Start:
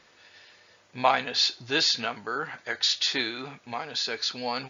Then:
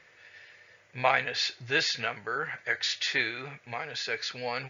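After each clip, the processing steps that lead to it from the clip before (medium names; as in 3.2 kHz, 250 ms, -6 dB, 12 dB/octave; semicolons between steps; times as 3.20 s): graphic EQ 125/250/500/1000/2000/4000 Hz +8/-7/+5/-4/+11/-5 dB; trim -4 dB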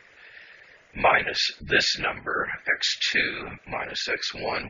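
whisper effect; spectral gate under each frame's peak -25 dB strong; trim +5 dB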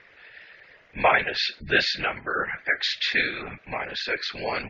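low-pass 4.7 kHz 24 dB/octave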